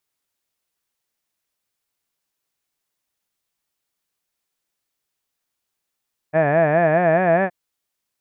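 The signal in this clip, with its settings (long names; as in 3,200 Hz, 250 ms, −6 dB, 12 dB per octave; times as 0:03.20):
vowel by formant synthesis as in had, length 1.17 s, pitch 149 Hz, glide +3.5 semitones, vibrato 4.8 Hz, vibrato depth 1.35 semitones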